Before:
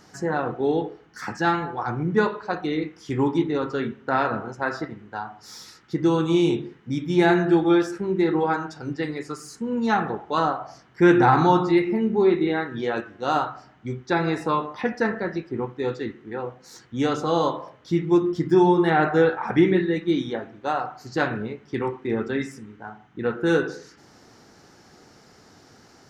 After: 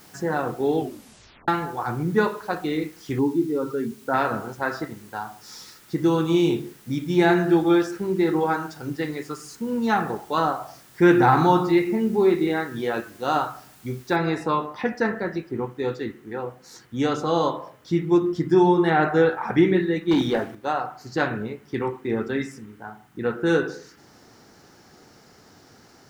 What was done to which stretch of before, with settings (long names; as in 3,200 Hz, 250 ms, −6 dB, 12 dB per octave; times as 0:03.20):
0:00.76: tape stop 0.72 s
0:03.19–0:04.14: expanding power law on the bin magnitudes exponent 1.7
0:14.16: noise floor change −53 dB −68 dB
0:20.11–0:20.55: leveller curve on the samples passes 2